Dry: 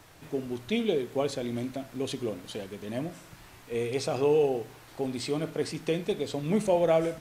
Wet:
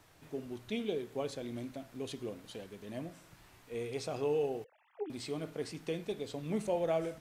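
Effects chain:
0:04.64–0:05.10: three sine waves on the formant tracks
level −8.5 dB

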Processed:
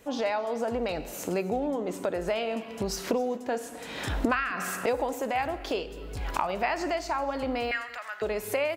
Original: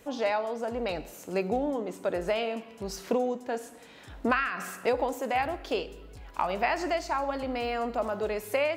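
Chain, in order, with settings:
camcorder AGC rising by 31 dB per second
0:07.71–0:08.22: high-pass with resonance 1,800 Hz, resonance Q 4.8
single-tap delay 261 ms −22 dB
level −1 dB

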